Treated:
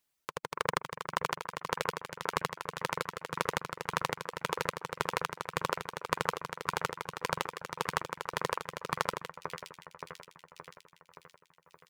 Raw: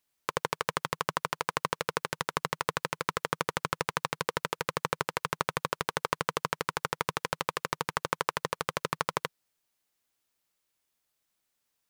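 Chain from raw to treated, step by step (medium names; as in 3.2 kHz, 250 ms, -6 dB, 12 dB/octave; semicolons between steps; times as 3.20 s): echo whose repeats swap between lows and highs 286 ms, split 2.2 kHz, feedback 75%, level -6.5 dB; reverb removal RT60 0.71 s; square tremolo 1.8 Hz, depth 60%, duty 45%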